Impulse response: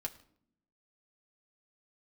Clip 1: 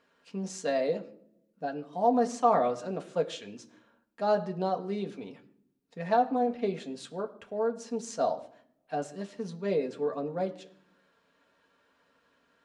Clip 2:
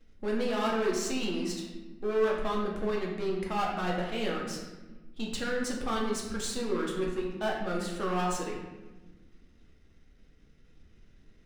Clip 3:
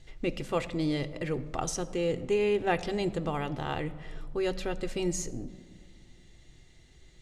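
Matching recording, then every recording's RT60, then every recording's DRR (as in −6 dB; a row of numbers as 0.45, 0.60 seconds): 1; non-exponential decay, 1.2 s, 2.1 s; 2.0, −2.5, 7.0 decibels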